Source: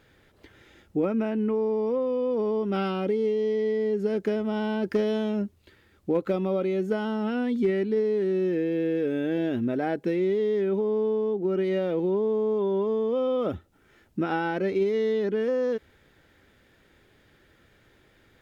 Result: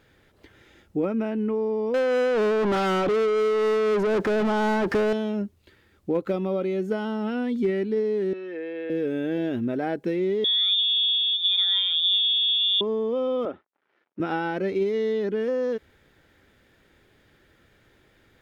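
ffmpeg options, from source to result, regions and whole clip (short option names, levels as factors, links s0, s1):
-filter_complex "[0:a]asettb=1/sr,asplit=3[s0][s1][s2];[s0]atrim=end=1.944[s3];[s1]atrim=start=1.94:end=5.13,asetpts=PTS-STARTPTS,afade=t=in:d=0.004:c=qsin,afade=t=out:st=3.186:d=0.004:c=qsin,tremolo=f=4:d=0.45,asplit=2[s4][s5];[s5]highpass=f=720:p=1,volume=50.1,asoftclip=type=tanh:threshold=0.158[s6];[s4][s6]amix=inputs=2:normalize=0,lowpass=f=1600:p=1,volume=0.501[s7];[s2]atrim=start=5.126[s8];[s3][s7]acrossfade=d=0.004:c1=hsin:c2=qsin[s9];[s9][s8]acrossfade=d=0.004:c1=qsin:c2=hsin,asettb=1/sr,asplit=3[s10][s11][s12];[s10]atrim=end=8.334[s13];[s11]atrim=start=8.33:end=8.9,asetpts=PTS-STARTPTS,afade=t=in:d=0.004:c=qsin,afade=t=out:st=0.566:d=0.004:c=qsin,highpass=670,lowpass=2800,aecho=1:1:6.1:0.4,atrim=end_sample=25137[s14];[s12]atrim=start=8.896[s15];[s13][s14]acrossfade=d=0.004:c1=hsin:c2=qsin[s16];[s16][s15]acrossfade=d=0.004:c1=qsin:c2=hsin,asettb=1/sr,asplit=3[s17][s18][s19];[s17]atrim=end=10.444[s20];[s18]atrim=start=10.44:end=12.81,asetpts=PTS-STARTPTS,afade=t=in:d=0.004:c=qsin,afade=t=out:st=2.366:d=0.004:c=qsin,aeval=exprs='sgn(val(0))*max(abs(val(0))-0.00224,0)':c=same,aemphasis=mode=reproduction:type=bsi,lowpass=f=3200:t=q:w=0.5098,lowpass=f=3200:t=q:w=0.6013,lowpass=f=3200:t=q:w=0.9,lowpass=f=3200:t=q:w=2.563,afreqshift=-3800[s21];[s19]atrim=start=12.806[s22];[s20][s21]acrossfade=d=0.004:c1=hsin:c2=qsin[s23];[s23][s22]acrossfade=d=0.004:c1=qsin:c2=hsin,asettb=1/sr,asplit=3[s24][s25][s26];[s24]atrim=end=13.454[s27];[s25]atrim=start=13.45:end=14.2,asetpts=PTS-STARTPTS,afade=t=in:d=0.004:c=qsin,afade=t=out:st=0.746:d=0.004:c=qsin,aeval=exprs='sgn(val(0))*max(abs(val(0))-0.00106,0)':c=same,highpass=360,lowpass=2200[s28];[s26]atrim=start=14.196[s29];[s27][s28]acrossfade=d=0.004:c1=hsin:c2=qsin[s30];[s30][s29]acrossfade=d=0.004:c1=qsin:c2=hsin"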